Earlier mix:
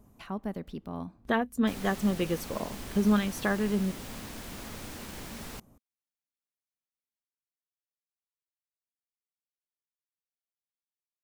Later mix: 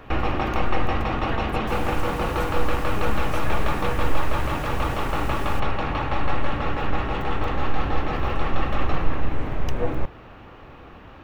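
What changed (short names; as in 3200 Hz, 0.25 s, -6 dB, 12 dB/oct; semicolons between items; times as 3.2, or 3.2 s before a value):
speech -6.5 dB; first sound: unmuted; master: add bell 230 Hz -7.5 dB 0.66 oct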